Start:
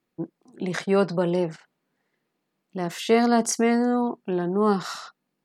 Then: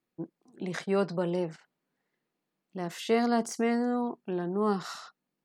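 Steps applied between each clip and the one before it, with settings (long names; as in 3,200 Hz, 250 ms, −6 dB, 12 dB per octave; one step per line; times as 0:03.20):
de-essing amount 50%
level −6.5 dB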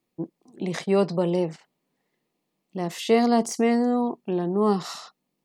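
parametric band 1,500 Hz −11 dB 0.39 octaves
level +6.5 dB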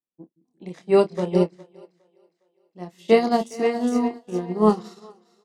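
double-tracking delay 28 ms −6 dB
echo with a time of its own for lows and highs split 330 Hz, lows 175 ms, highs 410 ms, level −9 dB
expander for the loud parts 2.5 to 1, over −34 dBFS
level +5 dB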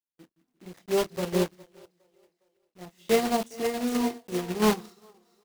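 one scale factor per block 3 bits
sample-and-hold tremolo
in parallel at −9 dB: hard clipping −16 dBFS, distortion −11 dB
on the sum: level −6 dB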